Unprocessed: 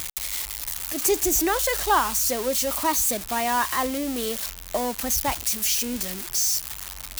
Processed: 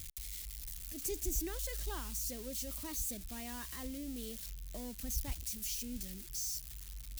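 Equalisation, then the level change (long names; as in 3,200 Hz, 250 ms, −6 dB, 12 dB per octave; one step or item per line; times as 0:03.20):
guitar amp tone stack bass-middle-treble 10-0-1
+4.5 dB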